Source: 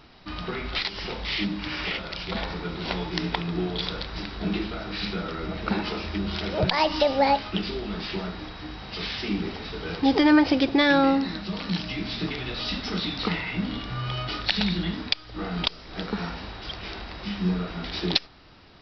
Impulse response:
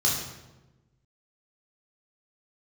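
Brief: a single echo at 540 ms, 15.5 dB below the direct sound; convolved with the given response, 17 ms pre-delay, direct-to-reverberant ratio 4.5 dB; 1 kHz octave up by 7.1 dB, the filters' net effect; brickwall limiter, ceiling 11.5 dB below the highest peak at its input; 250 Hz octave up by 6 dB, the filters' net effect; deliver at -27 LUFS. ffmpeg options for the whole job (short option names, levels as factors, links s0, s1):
-filter_complex "[0:a]equalizer=f=250:t=o:g=7,equalizer=f=1000:t=o:g=8.5,alimiter=limit=0.178:level=0:latency=1,aecho=1:1:540:0.168,asplit=2[s0][s1];[1:a]atrim=start_sample=2205,adelay=17[s2];[s1][s2]afir=irnorm=-1:irlink=0,volume=0.168[s3];[s0][s3]amix=inputs=2:normalize=0,volume=0.794"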